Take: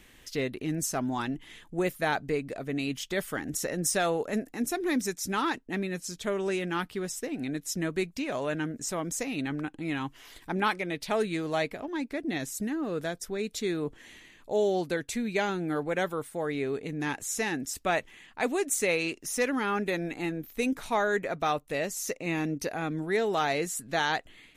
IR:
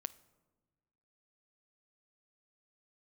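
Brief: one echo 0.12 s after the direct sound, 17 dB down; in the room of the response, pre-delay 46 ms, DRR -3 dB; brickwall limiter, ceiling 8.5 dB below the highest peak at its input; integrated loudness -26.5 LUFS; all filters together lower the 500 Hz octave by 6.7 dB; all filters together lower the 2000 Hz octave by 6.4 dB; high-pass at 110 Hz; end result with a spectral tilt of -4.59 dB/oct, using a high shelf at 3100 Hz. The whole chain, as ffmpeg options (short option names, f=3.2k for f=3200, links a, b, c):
-filter_complex "[0:a]highpass=110,equalizer=f=500:t=o:g=-8.5,equalizer=f=2k:t=o:g=-6,highshelf=f=3.1k:g=-5,alimiter=level_in=4dB:limit=-24dB:level=0:latency=1,volume=-4dB,aecho=1:1:120:0.141,asplit=2[a][b];[1:a]atrim=start_sample=2205,adelay=46[c];[b][c]afir=irnorm=-1:irlink=0,volume=5.5dB[d];[a][d]amix=inputs=2:normalize=0,volume=6.5dB"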